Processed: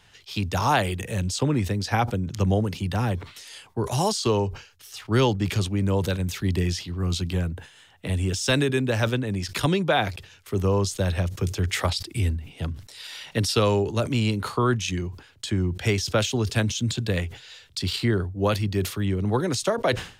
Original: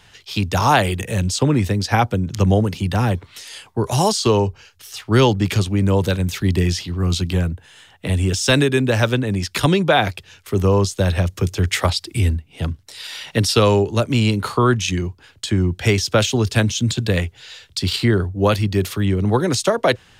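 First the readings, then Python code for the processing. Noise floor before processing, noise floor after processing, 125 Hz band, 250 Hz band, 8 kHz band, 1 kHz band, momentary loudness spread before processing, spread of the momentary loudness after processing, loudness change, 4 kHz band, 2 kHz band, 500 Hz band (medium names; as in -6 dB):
-51 dBFS, -54 dBFS, -6.5 dB, -6.5 dB, -6.0 dB, -6.5 dB, 11 LU, 11 LU, -6.5 dB, -6.0 dB, -6.5 dB, -6.5 dB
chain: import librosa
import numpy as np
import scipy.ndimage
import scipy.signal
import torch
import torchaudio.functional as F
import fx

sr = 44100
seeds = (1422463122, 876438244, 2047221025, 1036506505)

y = fx.sustainer(x, sr, db_per_s=130.0)
y = F.gain(torch.from_numpy(y), -6.5).numpy()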